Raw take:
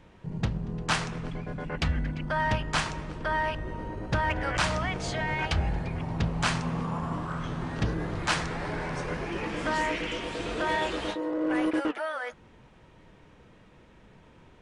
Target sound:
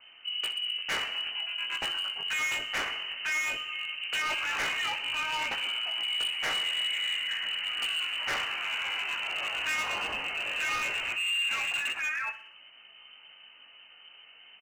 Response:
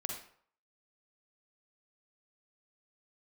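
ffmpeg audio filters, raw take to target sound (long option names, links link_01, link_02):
-filter_complex "[0:a]acrossover=split=120|440|1500[link_01][link_02][link_03][link_04];[link_01]acompressor=threshold=-46dB:ratio=6[link_05];[link_05][link_02][link_03][link_04]amix=inputs=4:normalize=0,lowpass=frequency=2600:width_type=q:width=0.5098,lowpass=frequency=2600:width_type=q:width=0.6013,lowpass=frequency=2600:width_type=q:width=0.9,lowpass=frequency=2600:width_type=q:width=2.563,afreqshift=-3100,flanger=delay=17:depth=3:speed=0.17,asoftclip=type=hard:threshold=-31.5dB,aecho=1:1:62|124|186|248|310:0.211|0.108|0.055|0.028|0.0143,volume=4dB"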